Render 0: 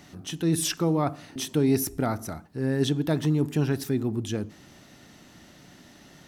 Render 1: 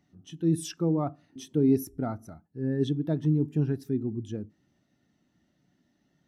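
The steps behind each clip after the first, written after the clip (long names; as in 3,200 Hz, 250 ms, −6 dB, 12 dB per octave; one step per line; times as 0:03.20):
every bin expanded away from the loudest bin 1.5 to 1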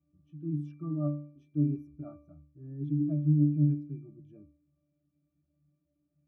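resonances in every octave D, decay 0.46 s
level +7 dB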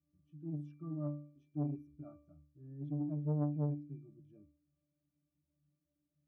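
saturating transformer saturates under 320 Hz
level −7.5 dB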